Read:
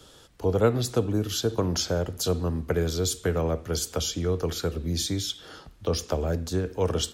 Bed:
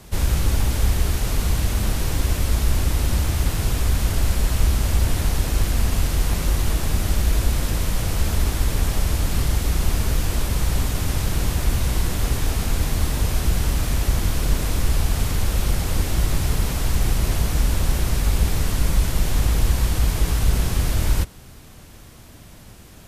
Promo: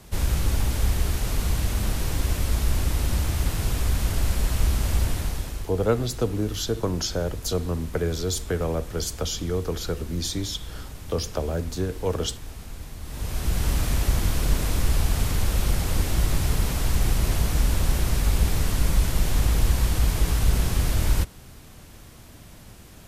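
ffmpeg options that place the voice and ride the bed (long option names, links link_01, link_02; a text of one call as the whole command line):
ffmpeg -i stem1.wav -i stem2.wav -filter_complex "[0:a]adelay=5250,volume=-0.5dB[link_01];[1:a]volume=11dB,afade=type=out:start_time=4.99:duration=0.71:silence=0.223872,afade=type=in:start_time=13.03:duration=0.69:silence=0.188365[link_02];[link_01][link_02]amix=inputs=2:normalize=0" out.wav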